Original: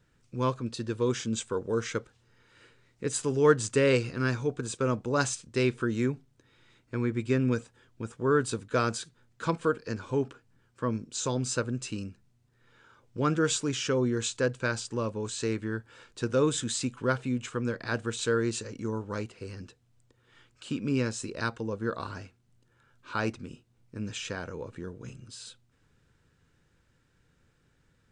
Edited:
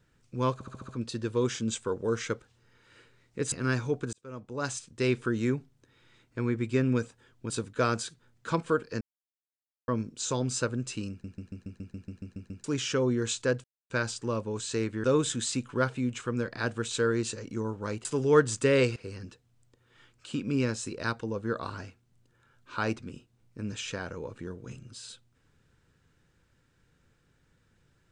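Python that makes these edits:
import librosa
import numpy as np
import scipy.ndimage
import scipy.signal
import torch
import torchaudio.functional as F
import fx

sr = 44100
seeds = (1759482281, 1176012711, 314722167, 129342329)

y = fx.edit(x, sr, fx.stutter(start_s=0.54, slice_s=0.07, count=6),
    fx.move(start_s=3.17, length_s=0.91, to_s=19.33),
    fx.fade_in_span(start_s=4.69, length_s=1.02),
    fx.cut(start_s=8.06, length_s=0.39),
    fx.silence(start_s=9.96, length_s=0.87),
    fx.stutter_over(start_s=12.05, slice_s=0.14, count=11),
    fx.insert_silence(at_s=14.59, length_s=0.26),
    fx.cut(start_s=15.73, length_s=0.59), tone=tone)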